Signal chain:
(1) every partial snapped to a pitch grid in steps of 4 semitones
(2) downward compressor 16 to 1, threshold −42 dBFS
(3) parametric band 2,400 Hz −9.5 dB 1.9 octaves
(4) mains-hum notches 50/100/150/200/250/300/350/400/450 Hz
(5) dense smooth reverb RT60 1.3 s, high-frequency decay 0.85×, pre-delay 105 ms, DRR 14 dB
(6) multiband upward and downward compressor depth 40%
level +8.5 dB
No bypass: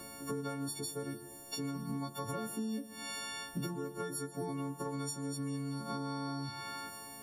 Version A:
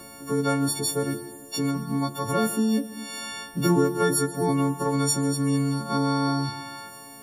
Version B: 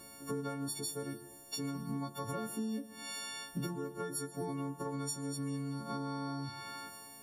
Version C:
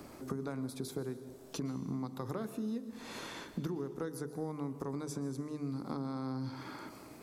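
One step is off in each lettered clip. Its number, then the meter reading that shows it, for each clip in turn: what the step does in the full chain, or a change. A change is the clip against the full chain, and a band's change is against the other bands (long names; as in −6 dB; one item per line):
2, average gain reduction 10.5 dB
6, change in momentary loudness spread +1 LU
1, 8 kHz band −6.0 dB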